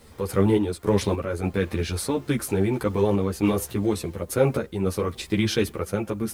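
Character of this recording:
a quantiser's noise floor 10 bits, dither triangular
sample-and-hold tremolo
a shimmering, thickened sound

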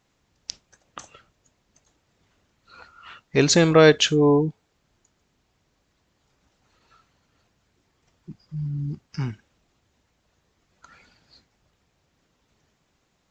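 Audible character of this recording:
background noise floor −71 dBFS
spectral slope −4.5 dB per octave

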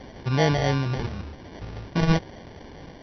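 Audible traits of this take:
a quantiser's noise floor 8 bits, dither triangular
phaser sweep stages 4, 0.76 Hz, lowest notch 660–1,400 Hz
aliases and images of a low sample rate 1,300 Hz, jitter 0%
MP2

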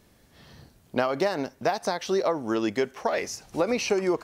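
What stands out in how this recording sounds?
background noise floor −60 dBFS
spectral slope −4.0 dB per octave

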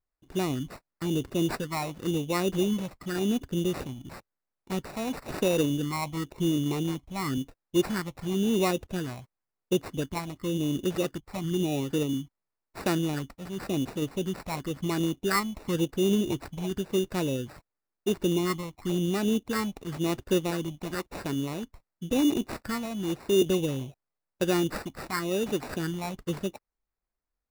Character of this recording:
phaser sweep stages 6, 0.95 Hz, lowest notch 390–3,500 Hz
aliases and images of a low sample rate 3,200 Hz, jitter 0%

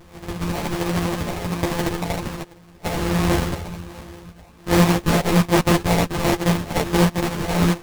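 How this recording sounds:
a buzz of ramps at a fixed pitch in blocks of 256 samples
phaser sweep stages 6, 1.3 Hz, lowest notch 360–3,300 Hz
aliases and images of a low sample rate 1,400 Hz, jitter 20%
a shimmering, thickened sound

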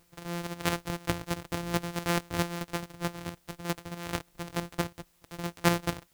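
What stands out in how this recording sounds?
a buzz of ramps at a fixed pitch in blocks of 256 samples
chopped level 4.6 Hz, depth 60%, duty 15%
a quantiser's noise floor 12 bits, dither triangular

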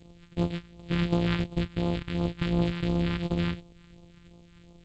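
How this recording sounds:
a buzz of ramps at a fixed pitch in blocks of 256 samples
phaser sweep stages 2, 2.8 Hz, lowest notch 580–1,600 Hz
G.722

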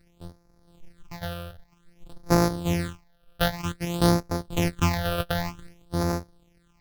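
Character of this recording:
a buzz of ramps at a fixed pitch in blocks of 256 samples
phaser sweep stages 8, 0.53 Hz, lowest notch 270–3,000 Hz
MP3

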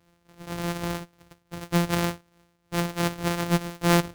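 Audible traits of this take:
a buzz of ramps at a fixed pitch in blocks of 256 samples
tremolo triangle 2.6 Hz, depth 70%

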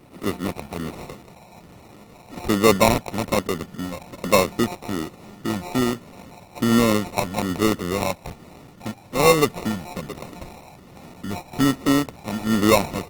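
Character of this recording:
a buzz of ramps at a fixed pitch in blocks of 8 samples
phaser sweep stages 8, 1.2 Hz, lowest notch 380–2,000 Hz
aliases and images of a low sample rate 1,600 Hz, jitter 0%
Opus

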